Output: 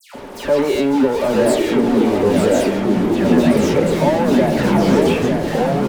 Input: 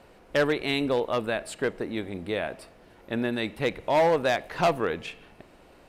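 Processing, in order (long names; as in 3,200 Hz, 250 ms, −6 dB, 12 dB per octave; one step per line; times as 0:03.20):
leveller curve on the samples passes 5
brickwall limiter −21.5 dBFS, peak gain reduction 7 dB
leveller curve on the samples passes 1
hollow resonant body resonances 260/400/570/870 Hz, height 13 dB, ringing for 50 ms
all-pass dispersion lows, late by 146 ms, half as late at 2,000 Hz
on a send: single-tap delay 903 ms −6 dB
on the sum: delay with pitch and tempo change per echo 772 ms, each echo −3 semitones, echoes 3
level −1 dB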